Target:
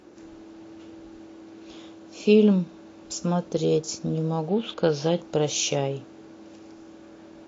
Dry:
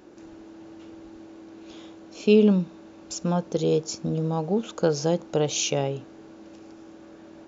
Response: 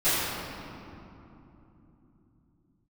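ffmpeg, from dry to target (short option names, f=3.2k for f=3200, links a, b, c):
-filter_complex "[0:a]asettb=1/sr,asplit=3[a][b][c];[a]atrim=end=4.494[d];[b]atrim=start=4.49:end=5.17,asetpts=PTS-STARTPTS,afade=t=in:d=0.004:c=qsin,afade=t=out:st=0.676:d=0.004:c=qsin,lowpass=f=3.4k:t=q:w=2.1[e];[c]atrim=start=5.166[f];[d][e]acrossfade=d=0.004:c1=hsin:c2=qsin[g];[g][f]acrossfade=d=0.004:c1=qsin:c2=hsin" -ar 32000 -c:a libvorbis -b:a 32k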